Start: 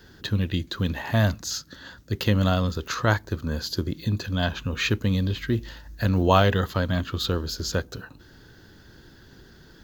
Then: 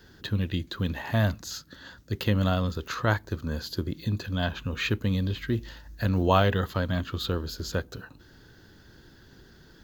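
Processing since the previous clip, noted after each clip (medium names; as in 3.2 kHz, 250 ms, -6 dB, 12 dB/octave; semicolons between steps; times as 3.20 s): dynamic bell 5.8 kHz, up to -6 dB, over -46 dBFS, Q 1.8; trim -3 dB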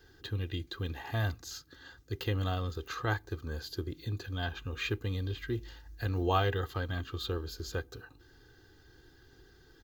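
comb 2.5 ms, depth 70%; trim -8 dB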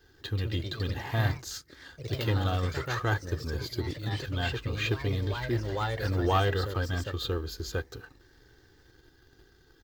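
waveshaping leveller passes 1; ever faster or slower copies 163 ms, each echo +2 st, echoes 3, each echo -6 dB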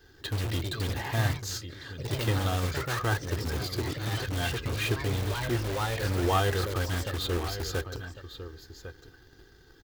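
delay 1101 ms -14.5 dB; in parallel at -5.5 dB: integer overflow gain 29.5 dB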